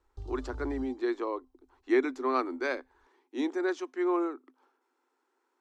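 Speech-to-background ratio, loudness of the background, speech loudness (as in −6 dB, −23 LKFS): 13.5 dB, −45.5 LKFS, −32.0 LKFS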